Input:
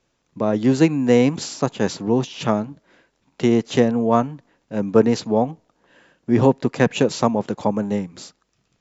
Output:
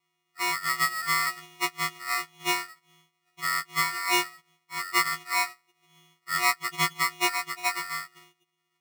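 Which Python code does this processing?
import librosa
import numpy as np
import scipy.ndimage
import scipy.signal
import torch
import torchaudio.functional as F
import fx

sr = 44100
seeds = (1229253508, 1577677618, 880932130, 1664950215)

y = fx.freq_snap(x, sr, grid_st=6)
y = scipy.signal.sosfilt(scipy.signal.cheby1(5, 1.0, [230.0, 1700.0], 'bandpass', fs=sr, output='sos'), y)
y = y * np.sign(np.sin(2.0 * np.pi * 1600.0 * np.arange(len(y)) / sr))
y = y * librosa.db_to_amplitude(-9.0)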